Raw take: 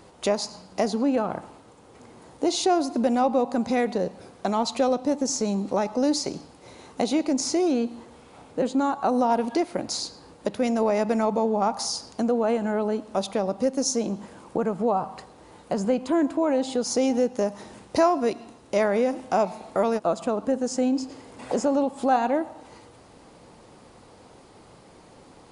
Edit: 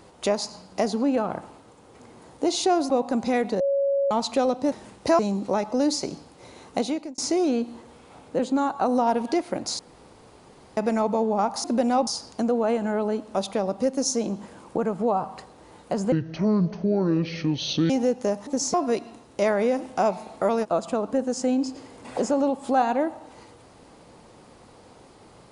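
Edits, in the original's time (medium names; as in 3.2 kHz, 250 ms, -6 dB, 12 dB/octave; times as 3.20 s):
2.90–3.33 s: move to 11.87 s
4.03–4.54 s: bleep 556 Hz -19.5 dBFS
5.15–5.42 s: swap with 17.61–18.08 s
7.01–7.41 s: fade out
10.02–11.00 s: room tone
15.92–17.04 s: speed 63%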